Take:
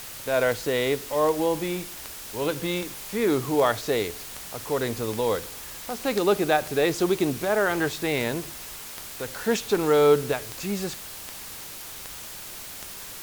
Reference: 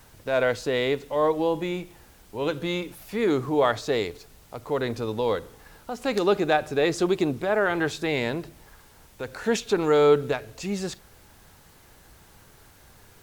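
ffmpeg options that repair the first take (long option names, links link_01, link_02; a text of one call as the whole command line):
ffmpeg -i in.wav -af "adeclick=threshold=4,afwtdn=0.011" out.wav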